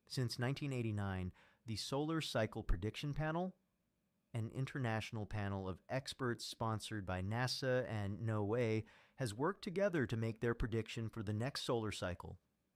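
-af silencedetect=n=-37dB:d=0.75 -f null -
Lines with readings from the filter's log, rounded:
silence_start: 3.47
silence_end: 4.35 | silence_duration: 0.88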